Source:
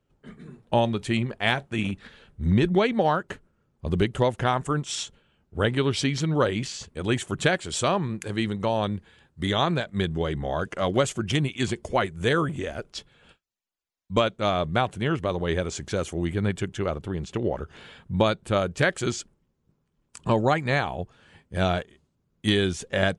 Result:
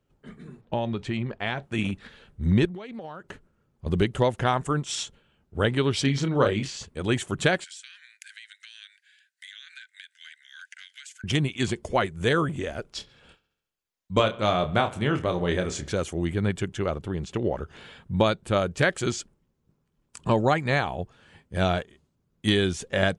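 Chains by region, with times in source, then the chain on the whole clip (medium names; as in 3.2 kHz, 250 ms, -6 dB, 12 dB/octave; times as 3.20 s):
0.61–1.63 s: compression 2.5:1, threshold -24 dBFS + distance through air 110 m
2.65–3.86 s: compression 16:1, threshold -34 dBFS + loudspeaker Doppler distortion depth 0.14 ms
6.02–6.77 s: treble shelf 6 kHz -6.5 dB + doubling 29 ms -6 dB
7.64–11.24 s: rippled Chebyshev high-pass 1.5 kHz, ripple 3 dB + compression 8:1, threshold -40 dBFS
12.88–15.92 s: doubling 28 ms -7 dB + feedback echo behind a low-pass 69 ms, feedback 59%, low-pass 3.5 kHz, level -19 dB
whole clip: none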